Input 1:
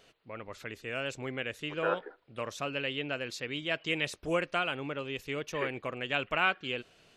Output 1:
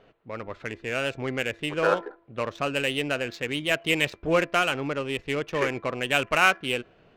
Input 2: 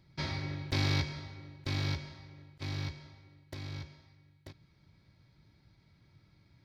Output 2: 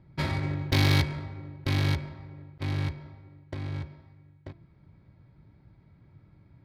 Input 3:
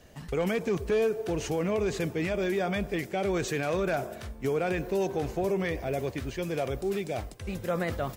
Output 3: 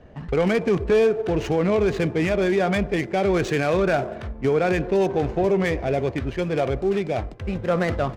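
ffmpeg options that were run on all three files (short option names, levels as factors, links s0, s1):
-af "bandreject=f=337.7:t=h:w=4,bandreject=f=675.4:t=h:w=4,bandreject=f=1013.1:t=h:w=4,bandreject=f=1350.8:t=h:w=4,bandreject=f=1688.5:t=h:w=4,bandreject=f=2026.2:t=h:w=4,bandreject=f=2363.9:t=h:w=4,adynamicsmooth=sensitivity=7.5:basefreq=1600,volume=2.51"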